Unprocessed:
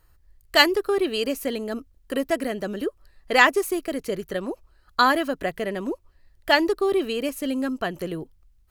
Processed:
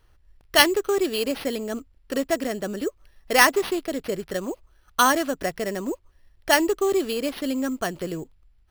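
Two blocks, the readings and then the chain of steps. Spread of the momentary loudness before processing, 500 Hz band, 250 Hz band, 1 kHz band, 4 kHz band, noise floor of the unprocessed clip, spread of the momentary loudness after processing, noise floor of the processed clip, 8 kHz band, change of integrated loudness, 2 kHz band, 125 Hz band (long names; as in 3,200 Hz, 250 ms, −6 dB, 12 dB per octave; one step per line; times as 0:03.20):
15 LU, 0.0 dB, 0.0 dB, 0.0 dB, 0.0 dB, −60 dBFS, 15 LU, −60 dBFS, +8.5 dB, 0.0 dB, −1.0 dB, 0.0 dB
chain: sample-rate reduction 7,400 Hz, jitter 0%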